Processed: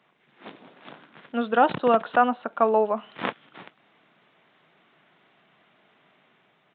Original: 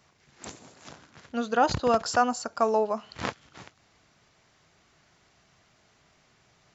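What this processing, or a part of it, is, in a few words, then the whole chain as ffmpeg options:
Bluetooth headset: -af "highpass=frequency=170:width=0.5412,highpass=frequency=170:width=1.3066,dynaudnorm=framelen=160:gausssize=7:maxgain=3.5dB,aresample=8000,aresample=44100" -ar 16000 -c:a sbc -b:a 64k

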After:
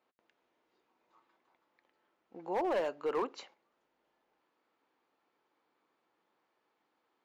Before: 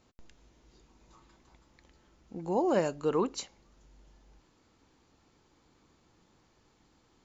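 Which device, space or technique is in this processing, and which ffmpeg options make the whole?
walkie-talkie: -af "highpass=470,lowpass=2600,asoftclip=type=hard:threshold=-27dB,agate=range=-7dB:threshold=-59dB:ratio=16:detection=peak"

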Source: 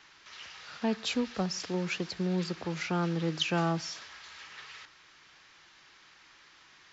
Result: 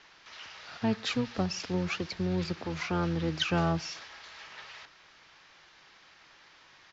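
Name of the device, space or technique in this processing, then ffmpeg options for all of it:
octave pedal: -filter_complex "[0:a]lowpass=frequency=6500:width=0.5412,lowpass=frequency=6500:width=1.3066,asplit=2[link_01][link_02];[link_02]asetrate=22050,aresample=44100,atempo=2,volume=-8dB[link_03];[link_01][link_03]amix=inputs=2:normalize=0"

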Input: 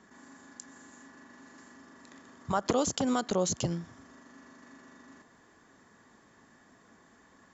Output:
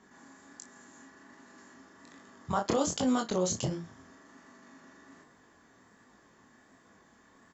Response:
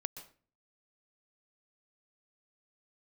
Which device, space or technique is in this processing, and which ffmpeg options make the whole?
double-tracked vocal: -filter_complex "[0:a]asplit=2[link_01][link_02];[link_02]adelay=35,volume=-13dB[link_03];[link_01][link_03]amix=inputs=2:normalize=0,flanger=delay=19.5:depth=7.6:speed=1.3,volume=2dB"

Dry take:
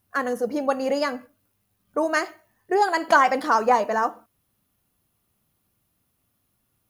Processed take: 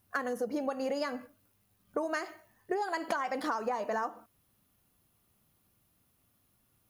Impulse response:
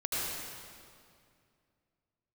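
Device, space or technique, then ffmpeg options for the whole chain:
serial compression, leveller first: -af "acompressor=threshold=-20dB:ratio=2.5,acompressor=threshold=-30dB:ratio=6"

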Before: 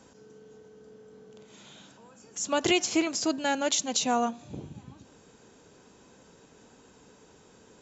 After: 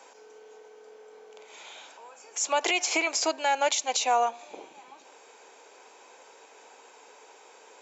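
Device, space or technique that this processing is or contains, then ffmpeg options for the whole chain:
laptop speaker: -af "highpass=frequency=430:width=0.5412,highpass=frequency=430:width=1.3066,equalizer=frequency=850:width_type=o:width=0.6:gain=7,equalizer=frequency=2300:width_type=o:width=0.31:gain=9.5,alimiter=limit=-19.5dB:level=0:latency=1:release=179,volume=4dB"

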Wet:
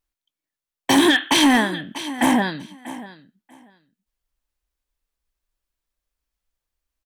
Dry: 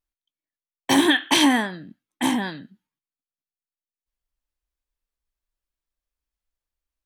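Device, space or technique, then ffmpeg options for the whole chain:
limiter into clipper: -filter_complex "[0:a]asettb=1/sr,asplit=3[link_01][link_02][link_03];[link_01]atrim=end=1.804[link_04];[link_02]atrim=start=1.8:end=2.42,asetpts=PTS-STARTPTS,afade=type=in:duration=0.004:curve=qsin,afade=type=out:start_time=0.616:duration=0.004:curve=qsin,equalizer=frequency=630:width_type=o:width=0.67:gain=8,equalizer=frequency=1600:width_type=o:width=0.67:gain=3,equalizer=frequency=4000:width_type=o:width=0.67:gain=-7[link_05];[link_03]atrim=start=2.416[link_06];[link_04][link_05]acrossfade=duration=0.004:curve1=hsin:curve2=qsin[link_07];[link_07][link_06]acrossfade=duration=0.004:curve1=qsin:curve2=hsin,aecho=1:1:640|1280:0.133|0.0227,alimiter=limit=-10.5dB:level=0:latency=1:release=32,asoftclip=type=hard:threshold=-14.5dB,volume=5dB"

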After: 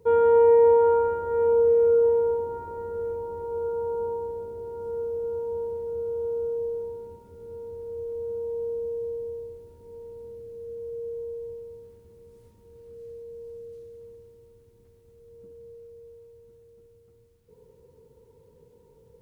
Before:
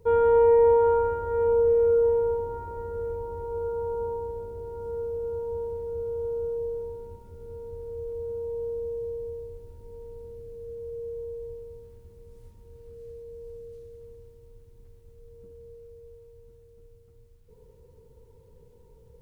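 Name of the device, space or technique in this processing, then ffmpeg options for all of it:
filter by subtraction: -filter_complex "[0:a]asplit=2[link_01][link_02];[link_02]lowpass=240,volume=-1[link_03];[link_01][link_03]amix=inputs=2:normalize=0"

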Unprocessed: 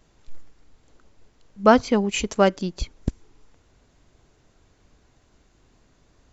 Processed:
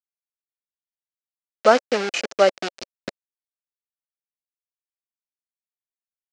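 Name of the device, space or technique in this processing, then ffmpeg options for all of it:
hand-held game console: -af "acrusher=bits=3:mix=0:aa=0.000001,highpass=450,equalizer=frequency=560:width_type=q:width=4:gain=4,equalizer=frequency=990:width_type=q:width=4:gain=-8,equalizer=frequency=3400:width_type=q:width=4:gain=-4,lowpass=frequency=5800:width=0.5412,lowpass=frequency=5800:width=1.3066,volume=2dB"

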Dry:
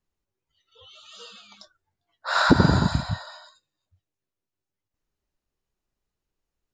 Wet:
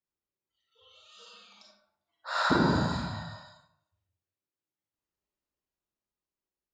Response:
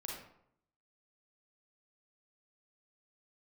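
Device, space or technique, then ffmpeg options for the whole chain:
far laptop microphone: -filter_complex "[1:a]atrim=start_sample=2205[link_01];[0:a][link_01]afir=irnorm=-1:irlink=0,highpass=frequency=160:poles=1,dynaudnorm=framelen=270:gausssize=9:maxgain=3.5dB,volume=-7.5dB"

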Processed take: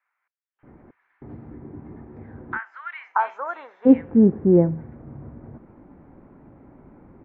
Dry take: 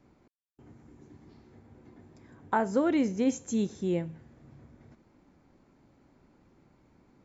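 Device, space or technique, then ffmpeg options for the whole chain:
action camera in a waterproof case: -filter_complex "[0:a]asplit=3[link_01][link_02][link_03];[link_01]afade=type=out:start_time=1.94:duration=0.02[link_04];[link_02]highpass=frequency=1000:width=0.5412,highpass=frequency=1000:width=1.3066,afade=type=in:start_time=1.94:duration=0.02,afade=type=out:start_time=3.22:duration=0.02[link_05];[link_03]afade=type=in:start_time=3.22:duration=0.02[link_06];[link_04][link_05][link_06]amix=inputs=3:normalize=0,lowpass=frequency=1900:width=0.5412,lowpass=frequency=1900:width=1.3066,equalizer=frequency=3800:width_type=o:width=1.6:gain=-3.5,acrossover=split=1500[link_07][link_08];[link_07]adelay=630[link_09];[link_09][link_08]amix=inputs=2:normalize=0,dynaudnorm=framelen=200:gausssize=5:maxgain=7.5dB,volume=6.5dB" -ar 24000 -c:a aac -b:a 48k

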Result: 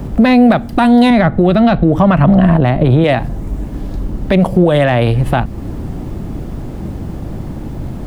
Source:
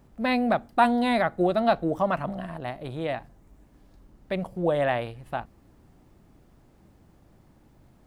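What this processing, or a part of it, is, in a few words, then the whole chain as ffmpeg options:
mastering chain: -filter_complex "[0:a]asettb=1/sr,asplit=3[link_01][link_02][link_03];[link_01]atrim=end=1.104[link_04];[link_02]atrim=start=1.1:end=3.04,asetpts=PTS-STARTPTS,afade=type=in:duration=0.004:curve=qsin,afade=type=out:start_time=1.936:duration=0.004:curve=qsin,bass=frequency=250:gain=9,treble=frequency=4000:gain=-10[link_05];[link_03]atrim=start=3.036[link_06];[link_04][link_05]acrossfade=duration=0.004:curve1=hsin:curve2=qsin[link_07];[link_07][link_06]acrossfade=duration=0.004:curve1=qsin:curve2=hsin,equalizer=frequency=3200:width_type=o:width=0.77:gain=2,acrossover=split=270|1400[link_08][link_09][link_10];[link_08]acompressor=threshold=-40dB:ratio=4[link_11];[link_09]acompressor=threshold=-36dB:ratio=4[link_12];[link_10]acompressor=threshold=-35dB:ratio=4[link_13];[link_11][link_12][link_13]amix=inputs=3:normalize=0,acompressor=threshold=-43dB:ratio=1.5,asoftclip=type=tanh:threshold=-24dB,tiltshelf=frequency=640:gain=5.5,alimiter=level_in=30dB:limit=-1dB:release=50:level=0:latency=1,volume=-1dB"

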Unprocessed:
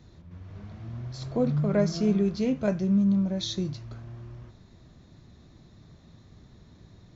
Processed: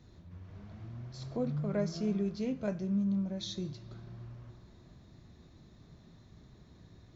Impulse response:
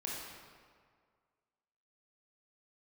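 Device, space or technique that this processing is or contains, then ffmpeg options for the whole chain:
ducked reverb: -filter_complex "[0:a]asplit=3[link_01][link_02][link_03];[1:a]atrim=start_sample=2205[link_04];[link_02][link_04]afir=irnorm=-1:irlink=0[link_05];[link_03]apad=whole_len=315722[link_06];[link_05][link_06]sidechaincompress=threshold=-41dB:ratio=8:attack=16:release=589,volume=-0.5dB[link_07];[link_01][link_07]amix=inputs=2:normalize=0,volume=-9dB"

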